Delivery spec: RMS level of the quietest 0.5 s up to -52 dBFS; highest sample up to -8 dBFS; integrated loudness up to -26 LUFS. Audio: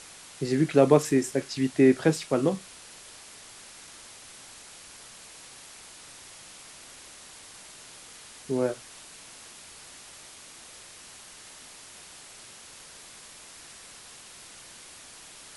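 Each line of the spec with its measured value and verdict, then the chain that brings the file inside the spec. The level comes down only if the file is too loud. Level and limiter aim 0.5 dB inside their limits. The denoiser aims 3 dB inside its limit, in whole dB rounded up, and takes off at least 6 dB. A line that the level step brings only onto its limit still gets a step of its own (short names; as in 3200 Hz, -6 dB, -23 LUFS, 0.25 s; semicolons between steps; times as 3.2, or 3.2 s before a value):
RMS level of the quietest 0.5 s -48 dBFS: fail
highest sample -6.0 dBFS: fail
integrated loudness -24.5 LUFS: fail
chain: denoiser 6 dB, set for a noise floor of -48 dBFS; gain -2 dB; limiter -8.5 dBFS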